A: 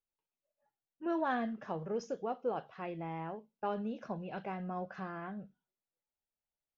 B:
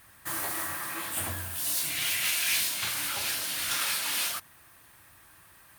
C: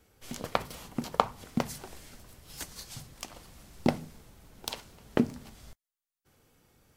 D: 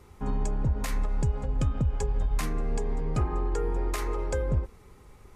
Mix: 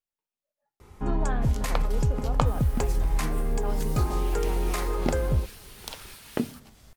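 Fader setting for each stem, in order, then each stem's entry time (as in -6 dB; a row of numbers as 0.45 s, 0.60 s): -1.5 dB, -17.5 dB, -2.5 dB, +2.0 dB; 0.00 s, 2.20 s, 1.20 s, 0.80 s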